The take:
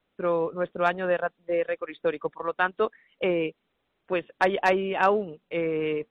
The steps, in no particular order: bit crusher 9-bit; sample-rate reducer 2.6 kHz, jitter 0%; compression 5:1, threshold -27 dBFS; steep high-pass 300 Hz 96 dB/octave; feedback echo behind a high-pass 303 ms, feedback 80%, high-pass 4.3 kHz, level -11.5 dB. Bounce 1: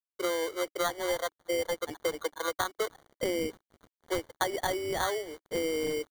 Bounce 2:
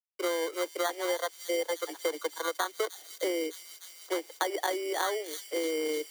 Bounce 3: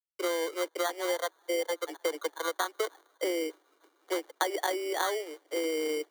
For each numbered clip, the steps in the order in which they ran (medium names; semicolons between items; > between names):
compression > feedback echo behind a high-pass > bit crusher > steep high-pass > sample-rate reducer; sample-rate reducer > feedback echo behind a high-pass > bit crusher > compression > steep high-pass; bit crusher > compression > feedback echo behind a high-pass > sample-rate reducer > steep high-pass